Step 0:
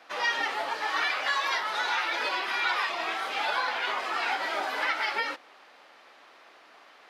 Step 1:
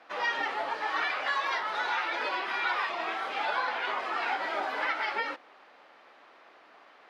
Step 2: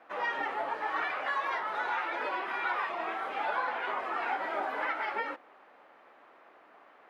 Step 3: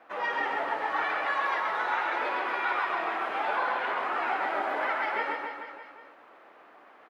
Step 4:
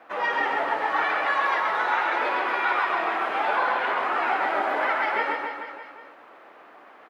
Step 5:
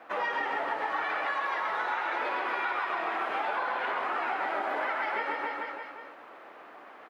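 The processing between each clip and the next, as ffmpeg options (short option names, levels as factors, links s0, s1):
-af "lowpass=f=2100:p=1"
-af "equalizer=f=4800:t=o:w=1.6:g=-13"
-af "aecho=1:1:130|273|430.3|603.3|793.7:0.631|0.398|0.251|0.158|0.1,volume=1.19"
-af "highpass=51,volume=1.78"
-af "acompressor=threshold=0.0398:ratio=6"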